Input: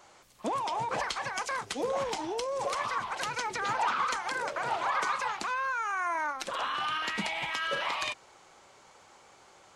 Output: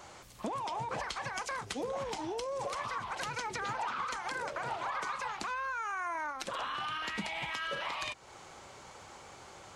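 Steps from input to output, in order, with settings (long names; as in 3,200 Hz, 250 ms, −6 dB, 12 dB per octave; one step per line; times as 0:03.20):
parametric band 72 Hz +8.5 dB 2.6 octaves
downward compressor 3 to 1, threshold −43 dBFS, peak gain reduction 13.5 dB
level +5 dB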